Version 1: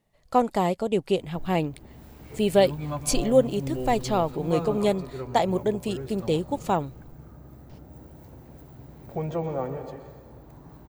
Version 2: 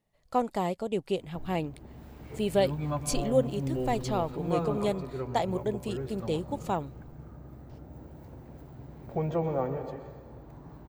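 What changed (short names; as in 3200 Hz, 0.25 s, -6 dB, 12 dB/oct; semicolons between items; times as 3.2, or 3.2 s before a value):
speech -6.0 dB; background: add high shelf 4900 Hz -9 dB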